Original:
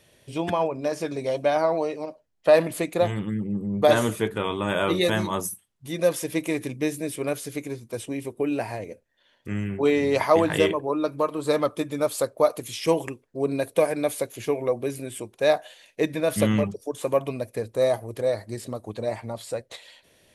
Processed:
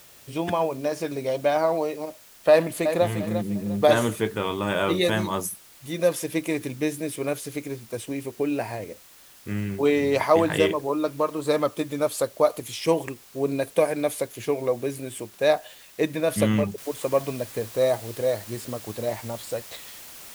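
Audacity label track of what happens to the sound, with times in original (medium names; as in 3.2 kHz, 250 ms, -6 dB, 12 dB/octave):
2.500000	3.060000	echo throw 350 ms, feedback 30%, level -8.5 dB
16.780000	16.780000	noise floor step -51 dB -43 dB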